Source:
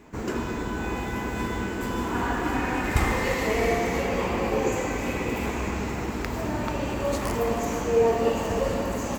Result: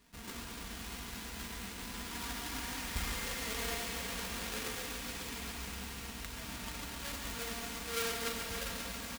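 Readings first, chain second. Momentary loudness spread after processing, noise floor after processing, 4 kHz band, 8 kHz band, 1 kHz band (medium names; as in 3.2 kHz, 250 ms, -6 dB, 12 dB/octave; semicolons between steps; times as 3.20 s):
7 LU, -46 dBFS, -1.5 dB, -2.5 dB, -16.0 dB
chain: square wave that keeps the level; amplifier tone stack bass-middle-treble 5-5-5; comb 4.3 ms, depth 42%; thinning echo 139 ms, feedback 79%, high-pass 300 Hz, level -8 dB; trim -6.5 dB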